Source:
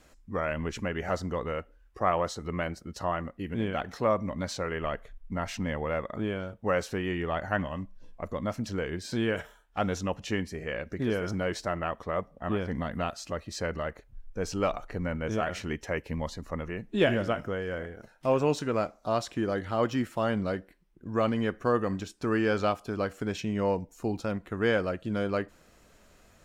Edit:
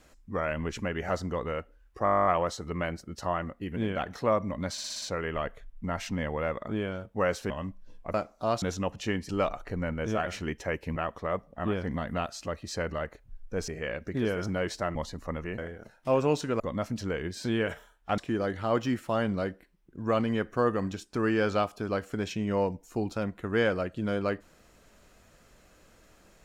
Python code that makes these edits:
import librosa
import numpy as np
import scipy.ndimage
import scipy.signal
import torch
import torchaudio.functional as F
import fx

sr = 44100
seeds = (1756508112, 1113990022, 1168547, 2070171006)

y = fx.edit(x, sr, fx.stutter(start_s=2.04, slice_s=0.02, count=12),
    fx.stutter(start_s=4.5, slice_s=0.06, count=6),
    fx.cut(start_s=6.98, length_s=0.66),
    fx.swap(start_s=8.28, length_s=1.58, other_s=18.78, other_length_s=0.48),
    fx.swap(start_s=10.53, length_s=1.27, other_s=14.52, other_length_s=1.67),
    fx.cut(start_s=16.82, length_s=0.94), tone=tone)